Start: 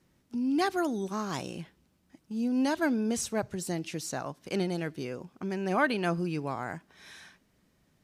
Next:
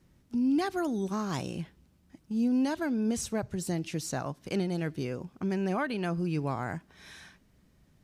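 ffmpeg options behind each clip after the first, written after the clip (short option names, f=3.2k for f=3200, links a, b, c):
-af "lowshelf=f=150:g=11,alimiter=limit=-21dB:level=0:latency=1:release=340"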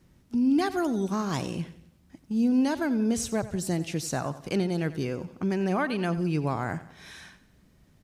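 -af "aecho=1:1:91|182|273|364:0.168|0.0772|0.0355|0.0163,volume=3.5dB"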